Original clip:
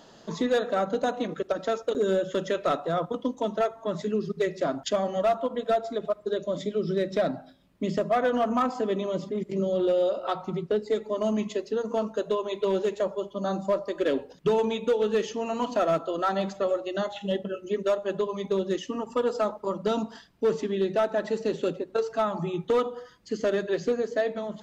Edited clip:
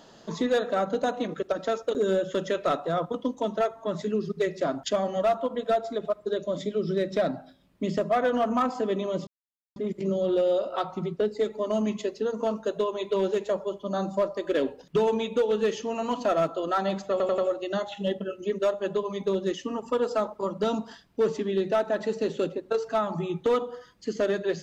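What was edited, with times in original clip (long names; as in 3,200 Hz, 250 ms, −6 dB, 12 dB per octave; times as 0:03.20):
0:09.27: splice in silence 0.49 s
0:16.62: stutter 0.09 s, 4 plays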